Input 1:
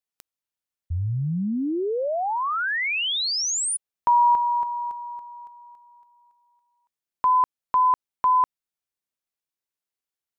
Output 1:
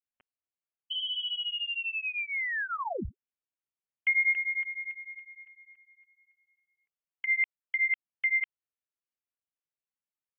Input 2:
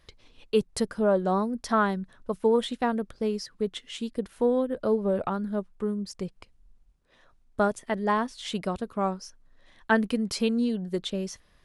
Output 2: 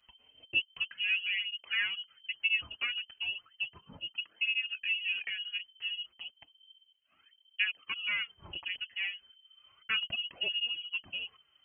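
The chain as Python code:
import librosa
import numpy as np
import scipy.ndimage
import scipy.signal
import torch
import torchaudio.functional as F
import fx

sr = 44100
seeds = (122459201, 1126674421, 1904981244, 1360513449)

y = fx.freq_invert(x, sr, carrier_hz=3100)
y = fx.flanger_cancel(y, sr, hz=0.33, depth_ms=7.0)
y = y * 10.0 ** (-5.5 / 20.0)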